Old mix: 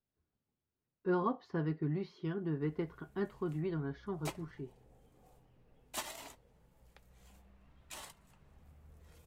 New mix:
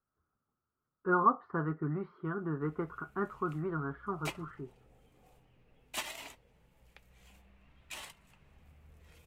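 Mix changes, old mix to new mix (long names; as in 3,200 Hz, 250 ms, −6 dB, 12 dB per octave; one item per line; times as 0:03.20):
speech: add low-pass with resonance 1,300 Hz, resonance Q 9.3
background: add parametric band 2,500 Hz +8.5 dB 0.93 octaves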